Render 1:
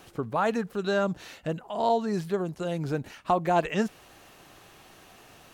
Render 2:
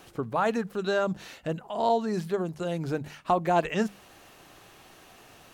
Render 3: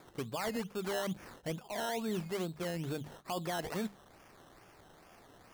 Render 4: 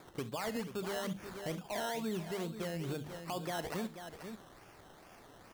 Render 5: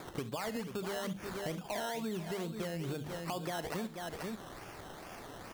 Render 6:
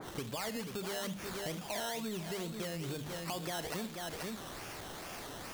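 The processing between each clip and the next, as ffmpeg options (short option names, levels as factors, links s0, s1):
-af "bandreject=f=50:t=h:w=6,bandreject=f=100:t=h:w=6,bandreject=f=150:t=h:w=6,bandreject=f=200:t=h:w=6"
-af "alimiter=limit=0.0794:level=0:latency=1:release=19,acrusher=samples=15:mix=1:aa=0.000001:lfo=1:lforange=9:lforate=2.3,volume=0.501"
-filter_complex "[0:a]asplit=2[s0][s1];[s1]aecho=0:1:41|66|485:0.141|0.141|0.266[s2];[s0][s2]amix=inputs=2:normalize=0,alimiter=level_in=2.24:limit=0.0631:level=0:latency=1:release=265,volume=0.447,volume=1.19"
-af "acompressor=threshold=0.00447:ratio=3,volume=2.82"
-af "aeval=exprs='val(0)+0.5*0.00708*sgn(val(0))':c=same,adynamicequalizer=threshold=0.00282:dfrequency=2300:dqfactor=0.7:tfrequency=2300:tqfactor=0.7:attack=5:release=100:ratio=0.375:range=3:mode=boostabove:tftype=highshelf,volume=0.668"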